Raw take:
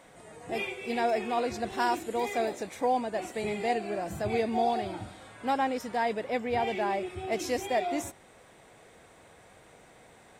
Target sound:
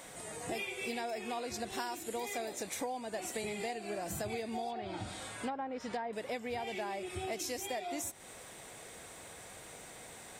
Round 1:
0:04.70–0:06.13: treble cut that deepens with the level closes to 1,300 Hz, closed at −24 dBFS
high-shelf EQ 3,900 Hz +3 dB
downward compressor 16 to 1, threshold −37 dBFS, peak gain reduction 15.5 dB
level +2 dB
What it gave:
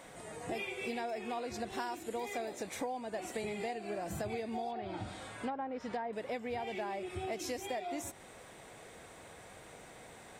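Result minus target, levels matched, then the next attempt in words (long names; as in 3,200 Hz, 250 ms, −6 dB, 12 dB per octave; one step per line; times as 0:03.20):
8,000 Hz band −6.5 dB
0:04.70–0:06.13: treble cut that deepens with the level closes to 1,300 Hz, closed at −24 dBFS
high-shelf EQ 3,900 Hz +13 dB
downward compressor 16 to 1, threshold −37 dBFS, peak gain reduction 16 dB
level +2 dB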